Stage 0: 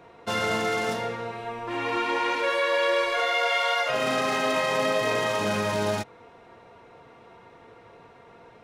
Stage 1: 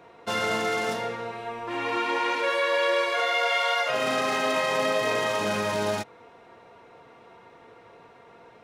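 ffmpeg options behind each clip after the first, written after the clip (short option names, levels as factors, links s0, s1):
-af "lowshelf=f=130:g=-7.5"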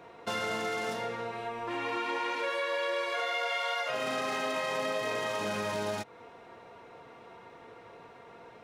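-af "acompressor=threshold=0.0178:ratio=2"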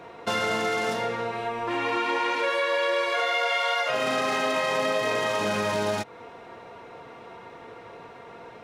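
-af "highshelf=f=10000:g=-3.5,volume=2.24"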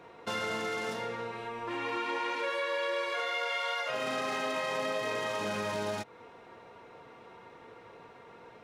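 -af "bandreject=f=690:w=17,volume=0.422"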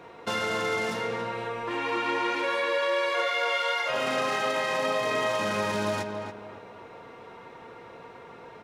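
-filter_complex "[0:a]asplit=2[s0][s1];[s1]adelay=281,lowpass=f=2200:p=1,volume=0.531,asplit=2[s2][s3];[s3]adelay=281,lowpass=f=2200:p=1,volume=0.33,asplit=2[s4][s5];[s5]adelay=281,lowpass=f=2200:p=1,volume=0.33,asplit=2[s6][s7];[s7]adelay=281,lowpass=f=2200:p=1,volume=0.33[s8];[s0][s2][s4][s6][s8]amix=inputs=5:normalize=0,volume=1.78"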